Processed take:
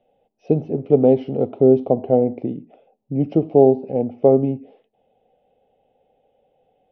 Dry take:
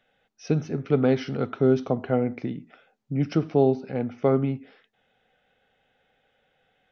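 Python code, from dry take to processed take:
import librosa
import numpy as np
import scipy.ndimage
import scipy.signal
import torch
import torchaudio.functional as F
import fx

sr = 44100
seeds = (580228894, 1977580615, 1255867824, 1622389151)

y = fx.curve_eq(x, sr, hz=(160.0, 340.0, 570.0, 810.0, 1500.0, 2800.0, 6600.0), db=(0, 5, 8, 4, -24, -8, -28))
y = y * 10.0 ** (2.0 / 20.0)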